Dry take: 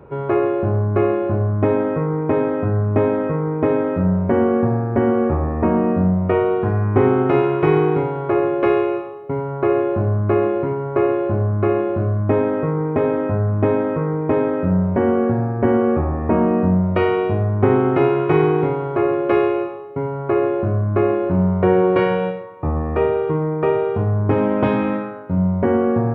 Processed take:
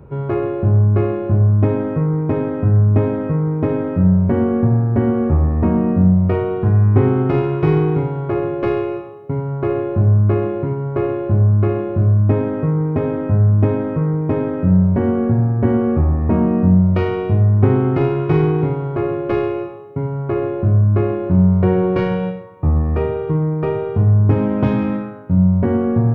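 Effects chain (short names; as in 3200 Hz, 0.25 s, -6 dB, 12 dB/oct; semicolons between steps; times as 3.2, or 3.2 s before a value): tracing distortion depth 0.024 ms; tone controls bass +12 dB, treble +7 dB; gain -4.5 dB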